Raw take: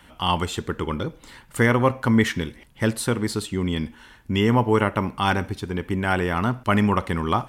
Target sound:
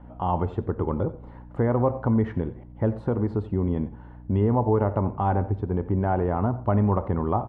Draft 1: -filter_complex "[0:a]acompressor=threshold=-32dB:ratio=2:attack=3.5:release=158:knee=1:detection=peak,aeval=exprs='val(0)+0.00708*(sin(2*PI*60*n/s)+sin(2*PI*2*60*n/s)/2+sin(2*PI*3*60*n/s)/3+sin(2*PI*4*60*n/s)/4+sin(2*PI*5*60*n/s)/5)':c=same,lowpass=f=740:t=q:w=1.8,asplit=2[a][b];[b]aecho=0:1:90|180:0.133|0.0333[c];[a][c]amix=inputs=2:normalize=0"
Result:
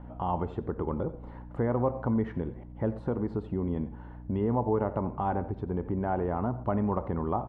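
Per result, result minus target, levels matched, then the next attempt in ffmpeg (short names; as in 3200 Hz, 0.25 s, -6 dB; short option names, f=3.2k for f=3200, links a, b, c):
compressor: peak gain reduction +5 dB; 125 Hz band -2.5 dB
-filter_complex "[0:a]acompressor=threshold=-22.5dB:ratio=2:attack=3.5:release=158:knee=1:detection=peak,aeval=exprs='val(0)+0.00708*(sin(2*PI*60*n/s)+sin(2*PI*2*60*n/s)/2+sin(2*PI*3*60*n/s)/3+sin(2*PI*4*60*n/s)/4+sin(2*PI*5*60*n/s)/5)':c=same,lowpass=f=740:t=q:w=1.8,asplit=2[a][b];[b]aecho=0:1:90|180:0.133|0.0333[c];[a][c]amix=inputs=2:normalize=0"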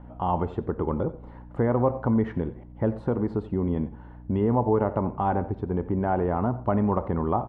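125 Hz band -2.5 dB
-filter_complex "[0:a]acompressor=threshold=-22.5dB:ratio=2:attack=3.5:release=158:knee=1:detection=peak,aeval=exprs='val(0)+0.00708*(sin(2*PI*60*n/s)+sin(2*PI*2*60*n/s)/2+sin(2*PI*3*60*n/s)/3+sin(2*PI*4*60*n/s)/4+sin(2*PI*5*60*n/s)/5)':c=same,lowpass=f=740:t=q:w=1.8,adynamicequalizer=threshold=0.00501:dfrequency=100:dqfactor=4.5:tfrequency=100:tqfactor=4.5:attack=5:release=100:ratio=0.417:range=4:mode=boostabove:tftype=bell,asplit=2[a][b];[b]aecho=0:1:90|180:0.133|0.0333[c];[a][c]amix=inputs=2:normalize=0"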